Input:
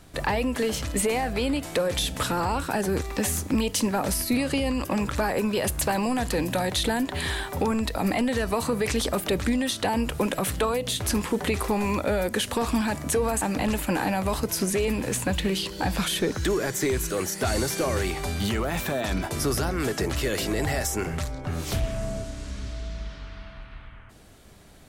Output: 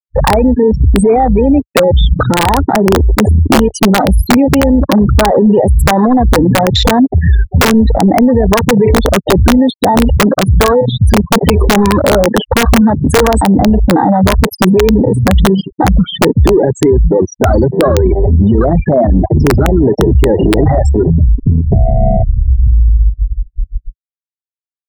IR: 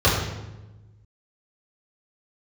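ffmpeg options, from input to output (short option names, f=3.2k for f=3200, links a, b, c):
-filter_complex "[0:a]bandreject=f=431.5:t=h:w=4,bandreject=f=863:t=h:w=4,bandreject=f=1.2945k:t=h:w=4,bandreject=f=1.726k:t=h:w=4,bandreject=f=2.1575k:t=h:w=4,bandreject=f=2.589k:t=h:w=4,bandreject=f=3.0205k:t=h:w=4,bandreject=f=3.452k:t=h:w=4,bandreject=f=3.8835k:t=h:w=4,bandreject=f=4.315k:t=h:w=4,bandreject=f=4.7465k:t=h:w=4,bandreject=f=5.178k:t=h:w=4,bandreject=f=5.6095k:t=h:w=4,bandreject=f=6.041k:t=h:w=4,bandreject=f=6.4725k:t=h:w=4,bandreject=f=6.904k:t=h:w=4,bandreject=f=7.3355k:t=h:w=4,bandreject=f=7.767k:t=h:w=4,bandreject=f=8.1985k:t=h:w=4,bandreject=f=8.63k:t=h:w=4,bandreject=f=9.0615k:t=h:w=4,bandreject=f=9.493k:t=h:w=4,bandreject=f=9.9245k:t=h:w=4,bandreject=f=10.356k:t=h:w=4,bandreject=f=10.7875k:t=h:w=4,bandreject=f=11.219k:t=h:w=4,bandreject=f=11.6505k:t=h:w=4,bandreject=f=12.082k:t=h:w=4,bandreject=f=12.5135k:t=h:w=4,bandreject=f=12.945k:t=h:w=4,bandreject=f=13.3765k:t=h:w=4,bandreject=f=13.808k:t=h:w=4,bandreject=f=14.2395k:t=h:w=4,afftfilt=real='re*gte(hypot(re,im),0.126)':imag='im*gte(hypot(re,im),0.126)':win_size=1024:overlap=0.75,afwtdn=0.0316,asplit=2[a][b];[b]acompressor=threshold=-34dB:ratio=5,volume=-2dB[c];[a][c]amix=inputs=2:normalize=0,aeval=exprs='(mod(5.96*val(0)+1,2)-1)/5.96':c=same,alimiter=level_in=25dB:limit=-1dB:release=50:level=0:latency=1,volume=-1dB"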